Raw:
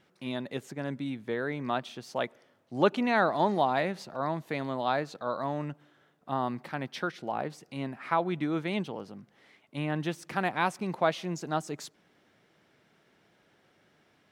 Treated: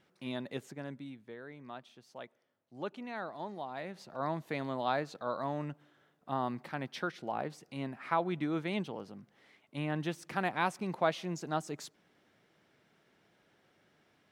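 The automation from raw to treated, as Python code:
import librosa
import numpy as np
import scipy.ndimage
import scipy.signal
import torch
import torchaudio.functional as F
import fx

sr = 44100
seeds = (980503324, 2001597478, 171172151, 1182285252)

y = fx.gain(x, sr, db=fx.line((0.6, -4.0), (1.36, -15.5), (3.69, -15.5), (4.24, -3.5)))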